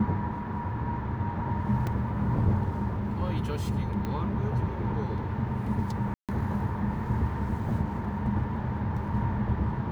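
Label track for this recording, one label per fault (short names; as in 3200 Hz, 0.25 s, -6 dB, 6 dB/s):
1.870000	1.870000	gap 2.7 ms
4.050000	4.050000	pop -20 dBFS
6.140000	6.290000	gap 0.147 s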